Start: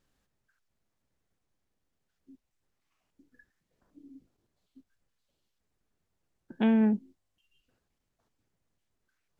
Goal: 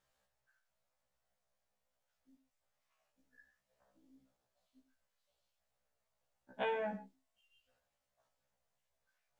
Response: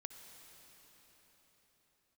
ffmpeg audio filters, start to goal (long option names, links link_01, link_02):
-filter_complex "[0:a]lowshelf=frequency=450:width_type=q:width=3:gain=-8[link_01];[1:a]atrim=start_sample=2205,afade=type=out:start_time=0.18:duration=0.01,atrim=end_sample=8379[link_02];[link_01][link_02]afir=irnorm=-1:irlink=0,afftfilt=real='re*1.73*eq(mod(b,3),0)':imag='im*1.73*eq(mod(b,3),0)':win_size=2048:overlap=0.75,volume=5dB"